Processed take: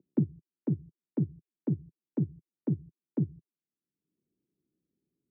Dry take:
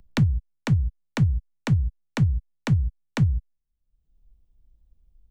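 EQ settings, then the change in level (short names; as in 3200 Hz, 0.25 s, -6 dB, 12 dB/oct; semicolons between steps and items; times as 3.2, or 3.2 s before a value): HPF 160 Hz 24 dB/oct; synth low-pass 350 Hz, resonance Q 3.9; air absorption 410 m; -5.0 dB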